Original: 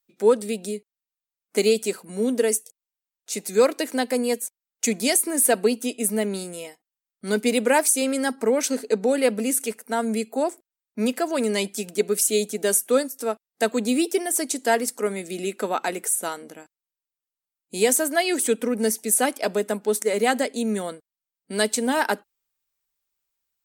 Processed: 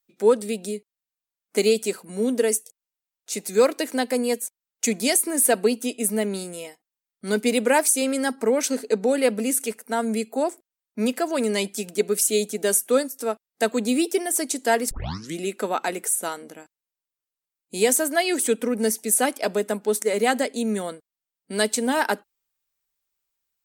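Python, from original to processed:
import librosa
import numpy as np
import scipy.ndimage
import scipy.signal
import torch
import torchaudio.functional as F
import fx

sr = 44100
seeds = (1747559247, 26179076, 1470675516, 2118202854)

y = fx.block_float(x, sr, bits=7, at=(3.32, 3.94))
y = fx.edit(y, sr, fx.tape_start(start_s=14.91, length_s=0.47), tone=tone)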